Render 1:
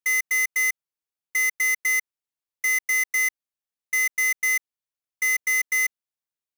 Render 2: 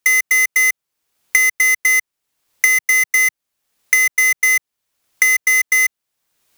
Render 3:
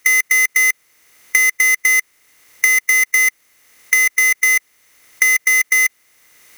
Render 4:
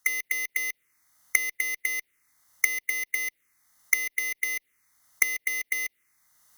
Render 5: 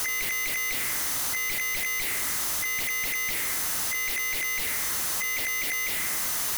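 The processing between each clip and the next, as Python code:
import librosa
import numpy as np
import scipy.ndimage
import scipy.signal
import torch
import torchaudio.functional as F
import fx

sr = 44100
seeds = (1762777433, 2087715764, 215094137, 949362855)

y1 = fx.band_squash(x, sr, depth_pct=100)
y1 = F.gain(torch.from_numpy(y1), 8.0).numpy()
y2 = fx.bin_compress(y1, sr, power=0.6)
y2 = F.gain(torch.from_numpy(y2), -1.0).numpy()
y3 = fx.env_phaser(y2, sr, low_hz=400.0, high_hz=1500.0, full_db=-11.5)
y3 = fx.cheby_harmonics(y3, sr, harmonics=(3, 5, 7), levels_db=(-9, -18, -28), full_scale_db=-1.5)
y3 = F.gain(torch.from_numpy(y3), -1.0).numpy()
y4 = np.sign(y3) * np.sqrt(np.mean(np.square(y3)))
y4 = F.gain(torch.from_numpy(y4), 3.0).numpy()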